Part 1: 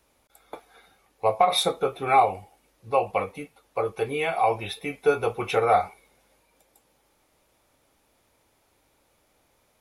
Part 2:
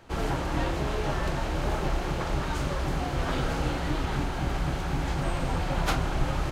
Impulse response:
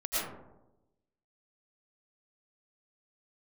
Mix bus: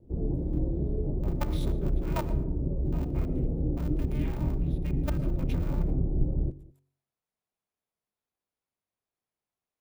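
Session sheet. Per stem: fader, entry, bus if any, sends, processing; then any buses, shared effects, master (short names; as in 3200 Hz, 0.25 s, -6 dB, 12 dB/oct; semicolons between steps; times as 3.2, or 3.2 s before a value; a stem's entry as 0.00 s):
-15.0 dB, 0.00 s, muted 5.92–6.51, send -21.5 dB, no echo send, level quantiser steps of 16 dB; polarity switched at an audio rate 150 Hz
+1.5 dB, 0.00 s, no send, echo send -22.5 dB, inverse Chebyshev low-pass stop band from 2400 Hz, stop band 80 dB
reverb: on, RT60 0.95 s, pre-delay 70 ms
echo: echo 0.203 s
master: de-hum 46.1 Hz, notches 11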